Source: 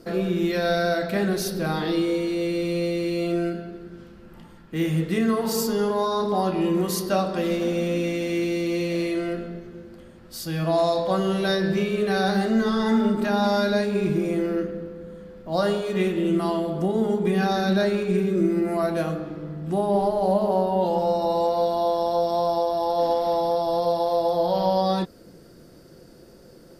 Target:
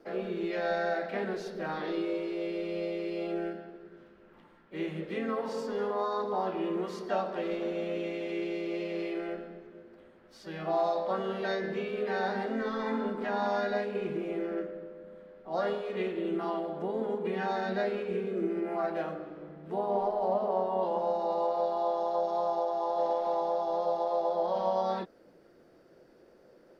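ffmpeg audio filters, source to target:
-filter_complex "[0:a]acrossover=split=8100[a][b];[b]acompressor=threshold=-58dB:ratio=4:attack=1:release=60[c];[a][c]amix=inputs=2:normalize=0,acrossover=split=280 3100:gain=0.224 1 0.178[d][e][f];[d][e][f]amix=inputs=3:normalize=0,asplit=2[g][h];[h]asetrate=52444,aresample=44100,atempo=0.840896,volume=-7dB[i];[g][i]amix=inputs=2:normalize=0,volume=-7.5dB"

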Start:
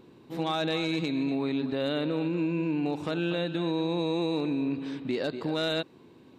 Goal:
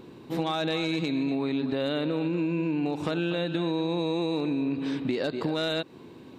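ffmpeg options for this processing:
-af "acompressor=threshold=-32dB:ratio=5,volume=7dB"

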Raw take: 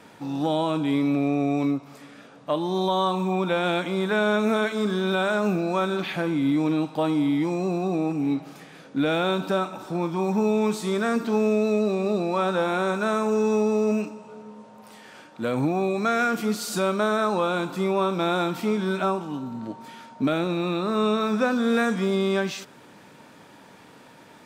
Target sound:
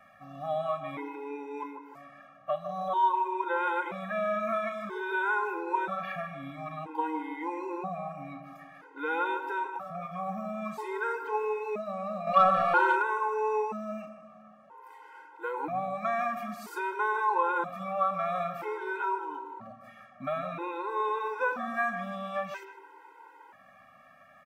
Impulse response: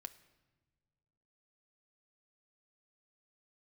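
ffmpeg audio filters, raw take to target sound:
-filter_complex "[0:a]equalizer=f=125:t=o:w=1:g=-5,equalizer=f=250:t=o:w=1:g=-9,equalizer=f=1k:t=o:w=1:g=12,equalizer=f=2k:t=o:w=1:g=6,equalizer=f=4k:t=o:w=1:g=-10,equalizer=f=8k:t=o:w=1:g=-8,asplit=2[a][b];[b]adelay=153,lowpass=f=1.5k:p=1,volume=-7.5dB,asplit=2[c][d];[d]adelay=153,lowpass=f=1.5k:p=1,volume=0.49,asplit=2[e][f];[f]adelay=153,lowpass=f=1.5k:p=1,volume=0.49,asplit=2[g][h];[h]adelay=153,lowpass=f=1.5k:p=1,volume=0.49,asplit=2[i][j];[j]adelay=153,lowpass=f=1.5k:p=1,volume=0.49,asplit=2[k][l];[l]adelay=153,lowpass=f=1.5k:p=1,volume=0.49[m];[a][c][e][g][i][k][m]amix=inputs=7:normalize=0,asettb=1/sr,asplit=3[n][o][p];[n]atrim=end=12.274[q];[o]atrim=start=12.27:end=13.02,asetpts=PTS-STARTPTS,afade=t=in:d=0.004:c=qsin,afade=t=out:st=0.746:d=0.004:c=qsin,acontrast=85[r];[p]atrim=start=13.016[s];[q][r]acrossfade=d=0.004:c1=hsin:c2=qsin[t];[t][s]acrossfade=d=0.004:c1=qsin:c2=hsin,afftfilt=real='re*gt(sin(2*PI*0.51*pts/sr)*(1-2*mod(floor(b*sr/1024/270),2)),0)':imag='im*gt(sin(2*PI*0.51*pts/sr)*(1-2*mod(floor(b*sr/1024/270),2)),0)':win_size=1024:overlap=0.75,volume=-7.5dB"

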